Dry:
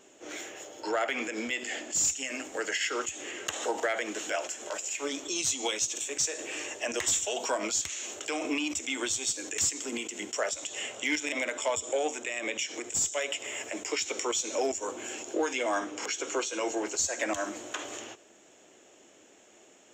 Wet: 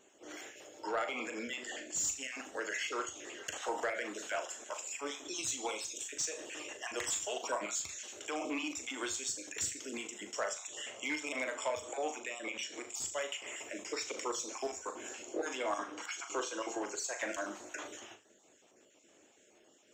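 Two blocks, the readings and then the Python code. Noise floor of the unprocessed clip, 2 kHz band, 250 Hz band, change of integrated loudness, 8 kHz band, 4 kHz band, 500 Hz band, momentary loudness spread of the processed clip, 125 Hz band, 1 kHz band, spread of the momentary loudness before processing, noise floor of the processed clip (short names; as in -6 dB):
-58 dBFS, -6.5 dB, -7.5 dB, -7.0 dB, -8.0 dB, -7.5 dB, -7.0 dB, 7 LU, -8.0 dB, -4.5 dB, 8 LU, -66 dBFS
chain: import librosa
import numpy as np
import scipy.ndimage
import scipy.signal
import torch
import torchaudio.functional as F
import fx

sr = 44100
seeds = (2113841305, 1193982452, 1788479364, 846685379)

y = fx.spec_dropout(x, sr, seeds[0], share_pct=23)
y = fx.dynamic_eq(y, sr, hz=1100.0, q=1.3, threshold_db=-47.0, ratio=4.0, max_db=6)
y = fx.room_flutter(y, sr, wall_m=6.7, rt60_s=0.27)
y = 10.0 ** (-17.0 / 20.0) * np.tanh(y / 10.0 ** (-17.0 / 20.0))
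y = F.gain(torch.from_numpy(y), -7.0).numpy()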